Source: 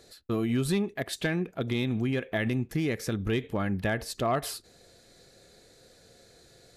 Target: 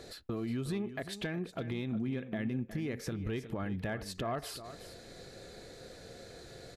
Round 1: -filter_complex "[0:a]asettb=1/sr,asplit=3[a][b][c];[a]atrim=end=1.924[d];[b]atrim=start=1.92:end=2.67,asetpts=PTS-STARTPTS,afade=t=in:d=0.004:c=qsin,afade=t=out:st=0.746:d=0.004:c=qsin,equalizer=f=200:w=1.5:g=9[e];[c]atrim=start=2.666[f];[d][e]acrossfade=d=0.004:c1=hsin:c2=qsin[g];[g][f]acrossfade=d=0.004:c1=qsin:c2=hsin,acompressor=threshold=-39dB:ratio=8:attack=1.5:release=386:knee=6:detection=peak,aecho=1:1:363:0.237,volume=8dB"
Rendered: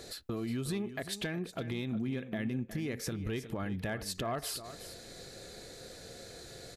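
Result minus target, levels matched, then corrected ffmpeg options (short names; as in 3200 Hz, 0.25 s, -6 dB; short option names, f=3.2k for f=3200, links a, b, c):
8000 Hz band +7.5 dB
-filter_complex "[0:a]asettb=1/sr,asplit=3[a][b][c];[a]atrim=end=1.924[d];[b]atrim=start=1.92:end=2.67,asetpts=PTS-STARTPTS,afade=t=in:d=0.004:c=qsin,afade=t=out:st=0.746:d=0.004:c=qsin,equalizer=f=200:w=1.5:g=9[e];[c]atrim=start=2.666[f];[d][e]acrossfade=d=0.004:c1=hsin:c2=qsin[g];[g][f]acrossfade=d=0.004:c1=qsin:c2=hsin,acompressor=threshold=-39dB:ratio=8:attack=1.5:release=386:knee=6:detection=peak,highshelf=f=4.4k:g=-9,aecho=1:1:363:0.237,volume=8dB"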